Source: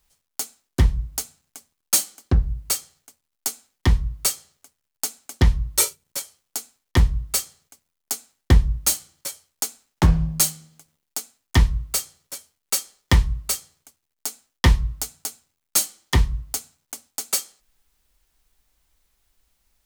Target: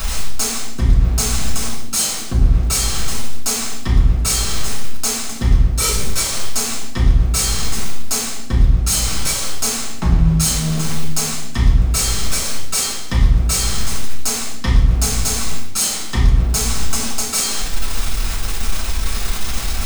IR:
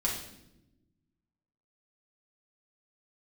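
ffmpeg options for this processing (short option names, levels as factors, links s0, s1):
-filter_complex "[0:a]aeval=exprs='val(0)+0.5*0.0316*sgn(val(0))':c=same,areverse,acompressor=threshold=0.0501:ratio=16,areverse,equalizer=f=15000:t=o:w=0.78:g=-10[s0];[1:a]atrim=start_sample=2205,asetrate=48510,aresample=44100[s1];[s0][s1]afir=irnorm=-1:irlink=0,volume=2.82"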